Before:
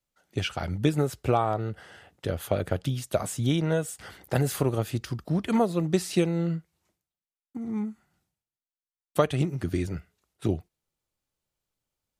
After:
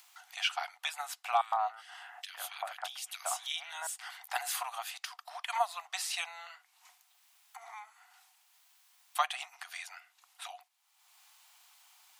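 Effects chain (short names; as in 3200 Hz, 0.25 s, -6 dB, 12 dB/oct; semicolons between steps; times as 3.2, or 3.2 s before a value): rippled Chebyshev high-pass 710 Hz, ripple 3 dB; 1.41–3.87 bands offset in time highs, lows 0.11 s, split 1900 Hz; upward compressor, threshold -42 dBFS; gain +1.5 dB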